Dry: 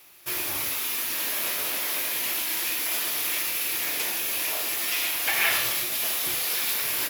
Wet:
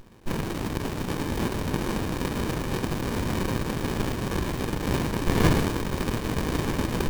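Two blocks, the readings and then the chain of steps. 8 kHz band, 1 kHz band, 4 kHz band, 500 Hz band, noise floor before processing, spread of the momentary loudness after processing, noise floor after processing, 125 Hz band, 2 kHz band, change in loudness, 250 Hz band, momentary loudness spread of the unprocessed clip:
-12.0 dB, +4.0 dB, -8.5 dB, +10.5 dB, -30 dBFS, 6 LU, -33 dBFS, +25.0 dB, -6.0 dB, -3.5 dB, +18.5 dB, 4 LU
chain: high-pass sweep 180 Hz -> 1.2 kHz, 1.36–1.92 s; sliding maximum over 65 samples; trim +6.5 dB

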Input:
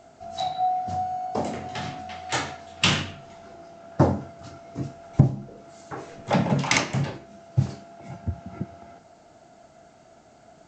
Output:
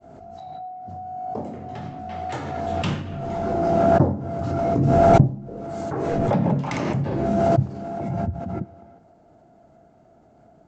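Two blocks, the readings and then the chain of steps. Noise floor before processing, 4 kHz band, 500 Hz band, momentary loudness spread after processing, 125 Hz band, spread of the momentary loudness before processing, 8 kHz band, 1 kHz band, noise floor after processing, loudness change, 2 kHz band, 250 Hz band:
-54 dBFS, -12.0 dB, +10.5 dB, 17 LU, +3.5 dB, 20 LU, under -10 dB, +4.0 dB, -55 dBFS, +4.0 dB, -6.0 dB, +5.5 dB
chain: fade-in on the opening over 1.89 s; tilt shelf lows +9.5 dB, about 1.4 kHz; swell ahead of each attack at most 20 dB/s; trim -8.5 dB

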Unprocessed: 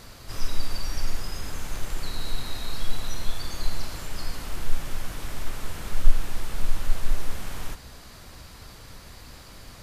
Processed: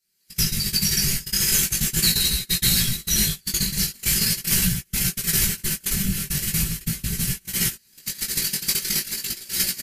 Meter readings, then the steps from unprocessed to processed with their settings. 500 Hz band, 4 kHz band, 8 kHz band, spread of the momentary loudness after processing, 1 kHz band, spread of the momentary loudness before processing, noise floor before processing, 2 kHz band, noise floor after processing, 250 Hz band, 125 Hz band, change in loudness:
+2.0 dB, +15.5 dB, +21.0 dB, 7 LU, -3.0 dB, 12 LU, -46 dBFS, +10.5 dB, -59 dBFS, +13.5 dB, +8.5 dB, +15.0 dB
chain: octave divider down 1 oct, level -5 dB; recorder AGC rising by 43 dB/s; high-order bell 790 Hz -15 dB; band-stop 3.6 kHz, Q 9.8; on a send: filtered feedback delay 468 ms, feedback 69%, level -19 dB; on the sum: gate -13 dBFS, range -40 dB; whisper effect; in parallel at +0.5 dB: peak limiter -8 dBFS, peak gain reduction 8 dB; on the sum: RIAA curve recording; chorus 0.41 Hz, delay 16.5 ms, depth 4 ms; comb 5.2 ms, depth 59%

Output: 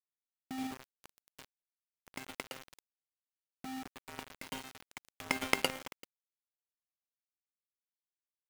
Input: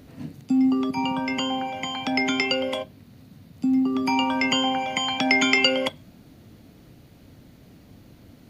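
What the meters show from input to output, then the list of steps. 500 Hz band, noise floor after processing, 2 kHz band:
-18.0 dB, under -85 dBFS, -16.5 dB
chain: delay 388 ms -8 dB; power-law waveshaper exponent 3; peaking EQ 5.5 kHz -10.5 dB 2 oct; word length cut 8-bit, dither none; trim +5 dB

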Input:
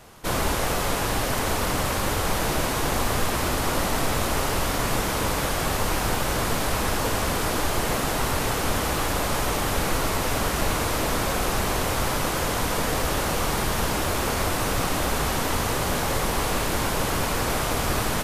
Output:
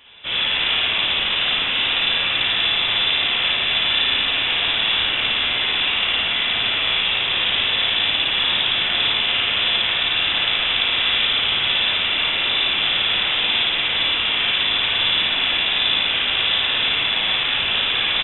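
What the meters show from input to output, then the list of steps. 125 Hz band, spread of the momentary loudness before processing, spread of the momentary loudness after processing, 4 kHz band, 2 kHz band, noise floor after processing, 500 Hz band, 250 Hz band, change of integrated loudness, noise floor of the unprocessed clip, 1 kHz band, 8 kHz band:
-12.0 dB, 0 LU, 1 LU, +16.5 dB, +9.0 dB, -22 dBFS, -7.5 dB, -9.0 dB, +7.5 dB, -26 dBFS, -3.5 dB, under -40 dB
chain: octave divider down 1 oct, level +3 dB; high-pass 160 Hz 24 dB/octave; on a send: loudspeakers at several distances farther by 19 m -3 dB, 38 m -12 dB; on the sum: spring tank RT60 1.9 s, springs 37/56 ms, chirp 35 ms, DRR -2 dB; frequency inversion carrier 3.7 kHz

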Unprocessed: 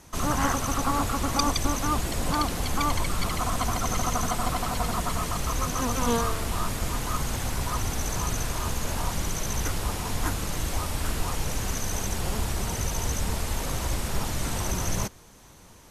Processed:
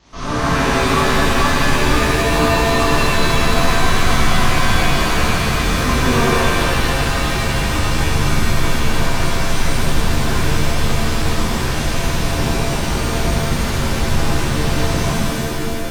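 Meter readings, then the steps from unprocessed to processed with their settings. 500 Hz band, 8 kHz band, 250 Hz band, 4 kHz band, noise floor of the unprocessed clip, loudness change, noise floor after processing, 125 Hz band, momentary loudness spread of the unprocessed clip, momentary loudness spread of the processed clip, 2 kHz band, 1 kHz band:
+14.0 dB, +5.0 dB, +12.0 dB, +12.5 dB, -50 dBFS, +11.0 dB, -20 dBFS, +11.5 dB, 5 LU, 5 LU, +16.0 dB, +10.0 dB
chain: CVSD coder 32 kbps; buffer glitch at 4.07/5.54/9.48 s, samples 2048, times 2; pitch-shifted reverb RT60 2.9 s, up +7 st, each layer -2 dB, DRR -12 dB; trim -4 dB

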